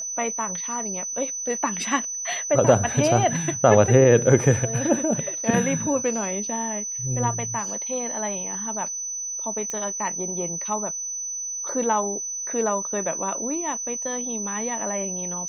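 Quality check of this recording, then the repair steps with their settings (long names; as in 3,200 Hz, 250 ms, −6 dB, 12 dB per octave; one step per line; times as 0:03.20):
whistle 6,000 Hz −28 dBFS
0:09.70: click −16 dBFS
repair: click removal
notch filter 6,000 Hz, Q 30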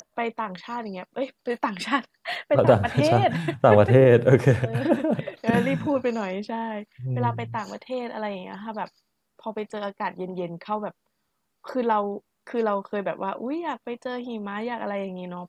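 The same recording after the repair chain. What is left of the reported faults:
none of them is left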